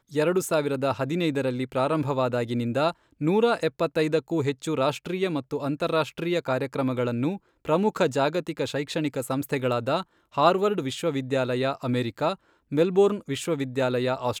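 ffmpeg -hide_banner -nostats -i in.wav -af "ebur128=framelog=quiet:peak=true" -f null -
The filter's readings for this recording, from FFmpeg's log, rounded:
Integrated loudness:
  I:         -25.9 LUFS
  Threshold: -36.0 LUFS
Loudness range:
  LRA:         1.5 LU
  Threshold: -46.1 LUFS
  LRA low:   -26.9 LUFS
  LRA high:  -25.4 LUFS
True peak:
  Peak:       -7.0 dBFS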